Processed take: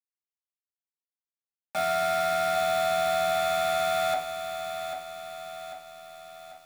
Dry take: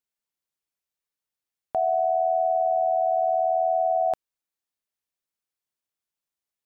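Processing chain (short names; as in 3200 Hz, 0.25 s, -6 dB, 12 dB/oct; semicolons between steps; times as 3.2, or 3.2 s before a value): one diode to ground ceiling -22 dBFS; HPF 990 Hz 6 dB/oct; bit-crush 6-bit; reverb RT60 0.45 s, pre-delay 3 ms, DRR -3.5 dB; lo-fi delay 0.793 s, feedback 55%, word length 9-bit, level -8 dB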